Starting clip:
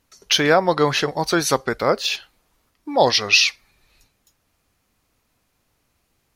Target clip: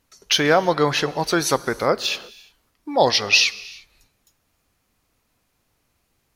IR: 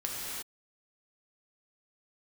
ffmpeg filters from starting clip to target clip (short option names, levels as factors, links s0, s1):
-filter_complex "[0:a]asplit=2[s0][s1];[1:a]atrim=start_sample=2205,highshelf=f=11000:g=11[s2];[s1][s2]afir=irnorm=-1:irlink=0,volume=0.0794[s3];[s0][s3]amix=inputs=2:normalize=0,volume=0.841"